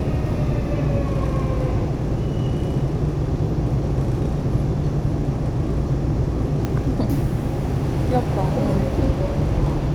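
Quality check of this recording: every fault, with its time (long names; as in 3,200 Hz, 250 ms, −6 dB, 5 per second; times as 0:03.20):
0:06.65: click −11 dBFS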